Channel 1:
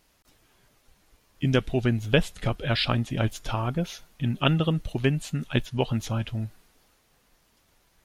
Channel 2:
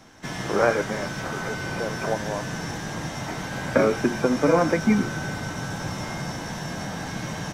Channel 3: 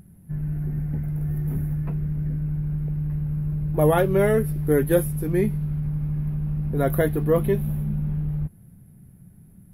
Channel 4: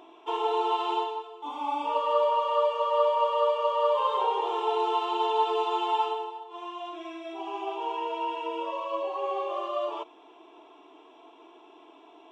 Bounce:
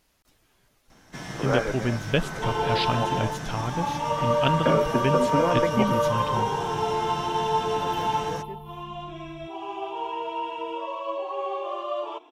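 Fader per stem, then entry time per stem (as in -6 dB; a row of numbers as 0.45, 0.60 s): -2.5, -5.0, -18.5, +0.5 dB; 0.00, 0.90, 1.00, 2.15 s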